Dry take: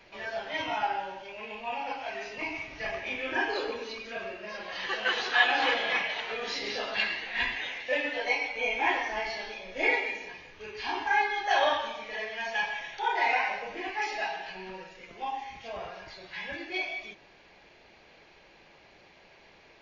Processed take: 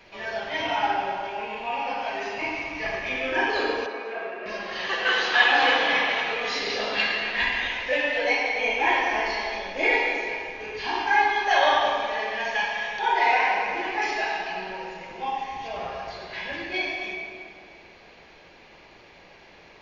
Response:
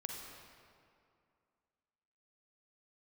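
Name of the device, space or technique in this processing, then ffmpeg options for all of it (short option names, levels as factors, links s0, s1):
stairwell: -filter_complex "[1:a]atrim=start_sample=2205[s0];[0:a][s0]afir=irnorm=-1:irlink=0,asettb=1/sr,asplit=3[s1][s2][s3];[s1]atrim=end=3.864[s4];[s2]atrim=start=3.86:end=4.46,asetpts=PTS-STARTPTS,afade=t=in:d=0.004:c=qsin,afade=t=out:st=0.596:d=0.004:c=qsin,acrossover=split=280 2400:gain=0.1 1 0.141[s5][s6][s7];[s5][s6][s7]amix=inputs=3:normalize=0[s8];[s3]atrim=start=4.456[s9];[s4][s8]acrossfade=d=0.004:c1=hsin:c2=qsin[s10];[s10][s9]acrossfade=d=0.004:c1=qsin:c2=hsin,volume=2.24"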